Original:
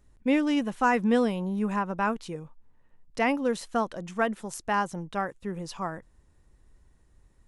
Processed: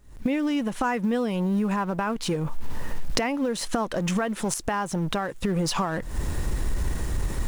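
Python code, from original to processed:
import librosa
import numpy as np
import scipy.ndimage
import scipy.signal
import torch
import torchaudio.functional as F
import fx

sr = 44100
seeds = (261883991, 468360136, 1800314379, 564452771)

y = fx.law_mismatch(x, sr, coded='mu')
y = fx.recorder_agc(y, sr, target_db=-15.0, rise_db_per_s=79.0, max_gain_db=30)
y = F.gain(torch.from_numpy(y), -3.5).numpy()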